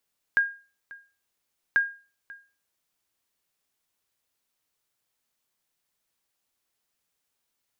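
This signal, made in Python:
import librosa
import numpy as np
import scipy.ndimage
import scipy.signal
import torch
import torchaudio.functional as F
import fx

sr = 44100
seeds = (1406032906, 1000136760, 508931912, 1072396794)

y = fx.sonar_ping(sr, hz=1620.0, decay_s=0.35, every_s=1.39, pings=2, echo_s=0.54, echo_db=-22.0, level_db=-14.0)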